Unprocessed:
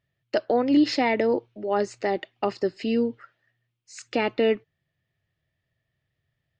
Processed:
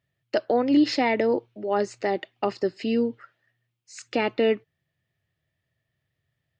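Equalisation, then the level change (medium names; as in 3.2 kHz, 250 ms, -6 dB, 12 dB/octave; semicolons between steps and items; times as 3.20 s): high-pass 57 Hz; 0.0 dB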